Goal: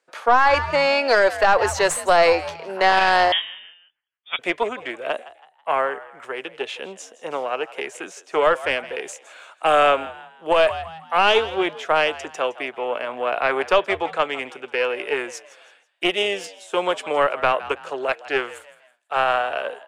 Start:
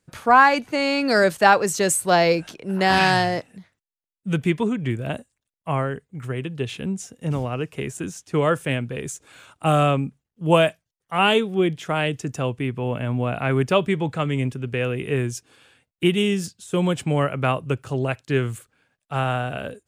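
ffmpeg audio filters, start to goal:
ffmpeg -i in.wav -filter_complex "[0:a]aeval=exprs='0.891*(cos(1*acos(clip(val(0)/0.891,-1,1)))-cos(1*PI/2))+0.0708*(cos(3*acos(clip(val(0)/0.891,-1,1)))-cos(3*PI/2))+0.0398*(cos(8*acos(clip(val(0)/0.891,-1,1)))-cos(8*PI/2))':channel_layout=same,highpass=frequency=500:width=0.5412,highpass=frequency=500:width=1.3066,asplit=2[link_01][link_02];[link_02]aeval=exprs='clip(val(0),-1,0.0891)':channel_layout=same,volume=-12dB[link_03];[link_01][link_03]amix=inputs=2:normalize=0,aemphasis=mode=reproduction:type=bsi,asplit=2[link_04][link_05];[link_05]asplit=3[link_06][link_07][link_08];[link_06]adelay=163,afreqshift=80,volume=-17.5dB[link_09];[link_07]adelay=326,afreqshift=160,volume=-26.1dB[link_10];[link_08]adelay=489,afreqshift=240,volume=-34.8dB[link_11];[link_09][link_10][link_11]amix=inputs=3:normalize=0[link_12];[link_04][link_12]amix=inputs=2:normalize=0,asettb=1/sr,asplit=3[link_13][link_14][link_15];[link_13]atrim=end=3.324[link_16];[link_14]atrim=start=3.32:end=4.39,asetpts=PTS-STARTPTS,afade=type=in:duration=0.004:curve=qsin,afade=type=out:start_time=1.066:duration=0.004:curve=qsin,lowpass=frequency=3200:width_type=q:width=0.5098,lowpass=frequency=3200:width_type=q:width=0.6013,lowpass=frequency=3200:width_type=q:width=0.9,lowpass=frequency=3200:width_type=q:width=2.563,afreqshift=-3800[link_17];[link_15]atrim=start=4.386[link_18];[link_16][link_17]acrossfade=duration=0.004:curve1=hsin:curve2=qsin[link_19];[link_19][link_18]acrossfade=duration=0.004:curve1=qsin:curve2=hsin,alimiter=level_in=12.5dB:limit=-1dB:release=50:level=0:latency=1,volume=-6.5dB" out.wav

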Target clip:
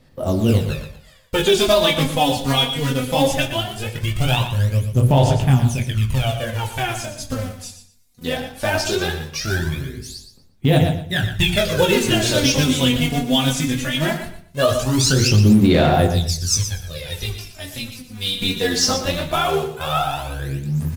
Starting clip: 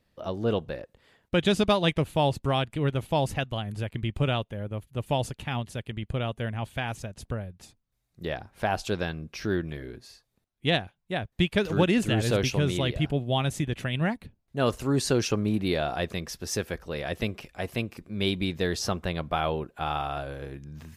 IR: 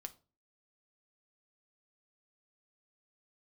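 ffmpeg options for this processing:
-filter_complex "[0:a]acrossover=split=7500[link_01][link_02];[link_02]acompressor=threshold=-57dB:ratio=4:attack=1:release=60[link_03];[link_01][link_03]amix=inputs=2:normalize=0,bass=frequency=250:gain=4,treble=frequency=4000:gain=12,bandreject=frequency=60:width_type=h:width=6,bandreject=frequency=120:width_type=h:width=6,bandreject=frequency=180:width_type=h:width=6,bandreject=frequency=240:width_type=h:width=6,bandreject=frequency=300:width_type=h:width=6,bandreject=frequency=360:width_type=h:width=6,bandreject=frequency=420:width_type=h:width=6,bandreject=frequency=480:width_type=h:width=6,asettb=1/sr,asplit=3[link_04][link_05][link_06];[link_04]atrim=end=16.124[link_07];[link_05]atrim=start=16.12:end=18.42,asetpts=PTS-STARTPTS,afade=type=in:duration=0.004:curve=qsin,afade=type=out:start_time=2.296:duration=0.004:curve=qsin,acrossover=split=140|3000[link_08][link_09][link_10];[link_09]acompressor=threshold=-53dB:ratio=2[link_11];[link_08][link_11][link_10]amix=inputs=3:normalize=0[link_12];[link_06]atrim=start=18.416[link_13];[link_07][link_12]acrossfade=duration=0.004:curve1=hsin:curve2=qsin[link_14];[link_14][link_13]acrossfade=duration=0.004:curve1=qsin:curve2=hsin,flanger=delay=19.5:depth=5.3:speed=1.5,acrusher=bits=4:mode=log:mix=0:aa=0.000001,aphaser=in_gain=1:out_gain=1:delay=4.2:decay=0.76:speed=0.19:type=sinusoidal,aecho=1:1:119|238|357:0.316|0.0696|0.0153[link_15];[1:a]atrim=start_sample=2205,asetrate=31311,aresample=44100[link_16];[link_15][link_16]afir=irnorm=-1:irlink=0,alimiter=level_in=14dB:limit=-1dB:release=50:level=0:latency=1,volume=-4dB"

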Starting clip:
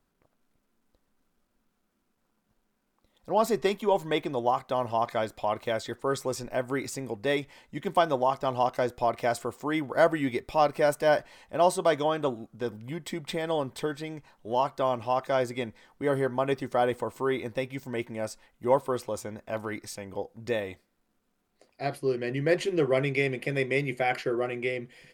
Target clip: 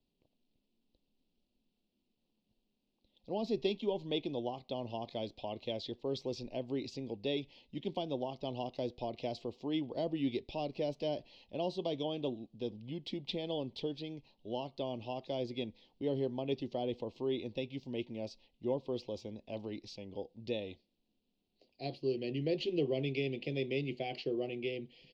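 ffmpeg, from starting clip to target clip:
ffmpeg -i in.wav -filter_complex "[0:a]acrossover=split=390[link_01][link_02];[link_02]acompressor=threshold=-26dB:ratio=4[link_03];[link_01][link_03]amix=inputs=2:normalize=0,firequalizer=gain_entry='entry(140,0);entry(240,3);entry(890,-7);entry(1400,-28);entry(2700,5);entry(4400,6);entry(8700,-30)':delay=0.05:min_phase=1,volume=-7dB" out.wav

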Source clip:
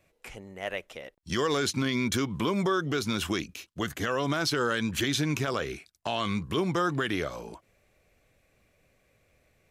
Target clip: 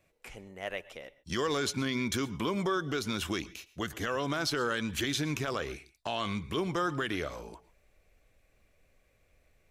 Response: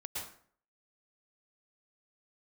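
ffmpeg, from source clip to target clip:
-filter_complex "[0:a]asubboost=boost=3.5:cutoff=59,asplit=2[link_01][link_02];[1:a]atrim=start_sample=2205,atrim=end_sample=6615[link_03];[link_02][link_03]afir=irnorm=-1:irlink=0,volume=-15.5dB[link_04];[link_01][link_04]amix=inputs=2:normalize=0,volume=-4dB"

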